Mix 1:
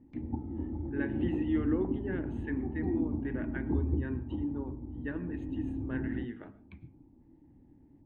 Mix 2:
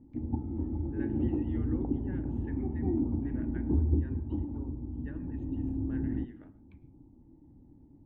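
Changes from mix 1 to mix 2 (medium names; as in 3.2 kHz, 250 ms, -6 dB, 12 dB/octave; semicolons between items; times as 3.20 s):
speech -11.0 dB; master: add bass shelf 220 Hz +5 dB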